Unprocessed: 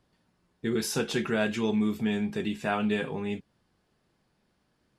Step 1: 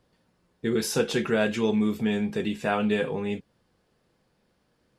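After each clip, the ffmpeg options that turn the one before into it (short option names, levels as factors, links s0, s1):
-af "equalizer=f=500:t=o:w=0.29:g=7,volume=1.26"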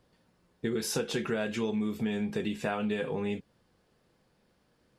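-af "acompressor=threshold=0.0398:ratio=5"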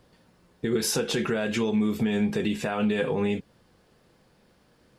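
-af "alimiter=level_in=1.06:limit=0.0631:level=0:latency=1:release=70,volume=0.944,volume=2.51"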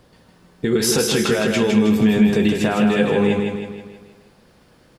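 -af "aecho=1:1:159|318|477|636|795|954:0.596|0.298|0.149|0.0745|0.0372|0.0186,volume=2.24"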